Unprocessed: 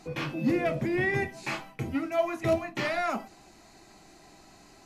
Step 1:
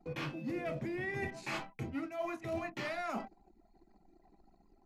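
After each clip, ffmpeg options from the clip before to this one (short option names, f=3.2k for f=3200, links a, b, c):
-af "anlmdn=0.0158,areverse,acompressor=threshold=-35dB:ratio=10,areverse"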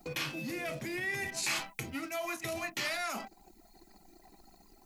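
-af "alimiter=level_in=13dB:limit=-24dB:level=0:latency=1:release=255,volume=-13dB,crystalizer=i=9.5:c=0,volume=4dB"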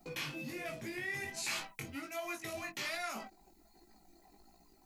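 -af "flanger=delay=17:depth=4.1:speed=1.3,volume=-1.5dB"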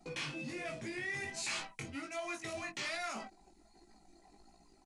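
-af "asoftclip=type=tanh:threshold=-31dB,aresample=22050,aresample=44100,volume=1dB"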